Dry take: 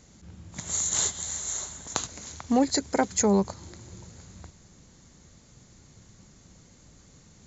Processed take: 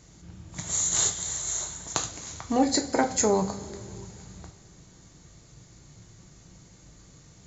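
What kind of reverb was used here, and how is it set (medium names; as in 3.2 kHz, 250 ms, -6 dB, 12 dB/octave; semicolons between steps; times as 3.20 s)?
two-slope reverb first 0.3 s, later 2.4 s, from -18 dB, DRR 4 dB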